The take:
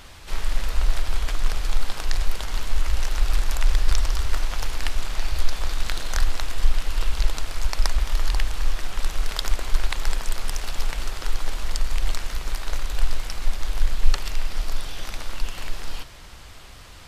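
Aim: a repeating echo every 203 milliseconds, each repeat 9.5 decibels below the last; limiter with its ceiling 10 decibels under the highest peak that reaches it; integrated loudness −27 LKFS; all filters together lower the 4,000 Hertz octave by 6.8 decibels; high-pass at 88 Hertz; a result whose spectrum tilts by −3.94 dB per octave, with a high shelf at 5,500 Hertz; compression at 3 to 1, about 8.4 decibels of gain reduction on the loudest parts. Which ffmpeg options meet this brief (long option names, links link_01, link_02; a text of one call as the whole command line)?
ffmpeg -i in.wav -af "highpass=88,equalizer=frequency=4000:width_type=o:gain=-7,highshelf=frequency=5500:gain=-4.5,acompressor=threshold=-39dB:ratio=3,alimiter=level_in=3.5dB:limit=-24dB:level=0:latency=1,volume=-3.5dB,aecho=1:1:203|406|609|812:0.335|0.111|0.0365|0.012,volume=15.5dB" out.wav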